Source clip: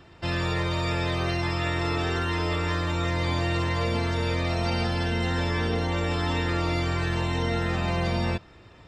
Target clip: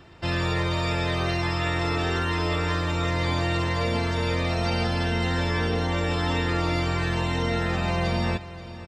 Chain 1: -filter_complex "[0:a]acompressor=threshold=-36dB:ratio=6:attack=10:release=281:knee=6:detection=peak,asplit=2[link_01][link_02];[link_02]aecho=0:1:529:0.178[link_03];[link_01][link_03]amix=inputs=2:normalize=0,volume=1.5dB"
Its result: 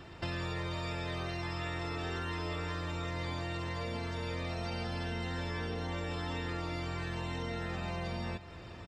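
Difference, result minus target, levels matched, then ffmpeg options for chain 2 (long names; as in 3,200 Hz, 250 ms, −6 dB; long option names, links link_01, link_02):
downward compressor: peak gain reduction +13.5 dB
-filter_complex "[0:a]asplit=2[link_01][link_02];[link_02]aecho=0:1:529:0.178[link_03];[link_01][link_03]amix=inputs=2:normalize=0,volume=1.5dB"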